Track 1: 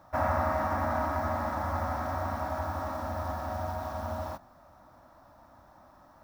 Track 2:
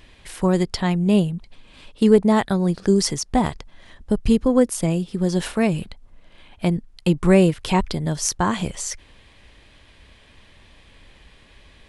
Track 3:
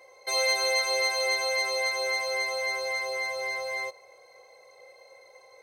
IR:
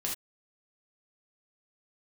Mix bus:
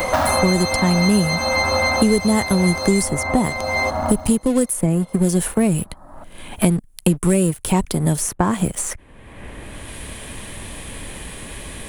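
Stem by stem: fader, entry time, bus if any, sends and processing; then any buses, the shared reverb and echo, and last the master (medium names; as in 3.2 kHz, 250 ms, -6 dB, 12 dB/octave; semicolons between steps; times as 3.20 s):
-1.5 dB, 0.00 s, send -10.5 dB, local Wiener filter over 15 samples
-4.0 dB, 0.00 s, no send, FFT filter 110 Hz 0 dB, 4.9 kHz -9 dB, 10 kHz +13 dB; waveshaping leveller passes 2
+1.0 dB, 0.00 s, no send, none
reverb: on, pre-delay 3 ms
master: three bands compressed up and down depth 100%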